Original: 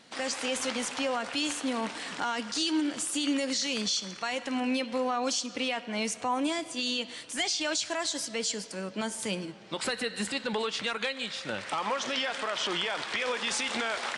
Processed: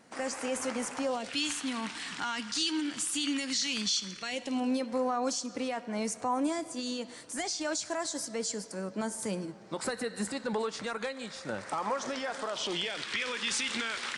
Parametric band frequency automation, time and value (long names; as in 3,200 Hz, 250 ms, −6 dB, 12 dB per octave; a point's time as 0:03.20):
parametric band −13.5 dB 1.1 octaves
0:00.99 3,600 Hz
0:01.44 540 Hz
0:03.98 540 Hz
0:04.84 3,000 Hz
0:12.33 3,000 Hz
0:13.12 690 Hz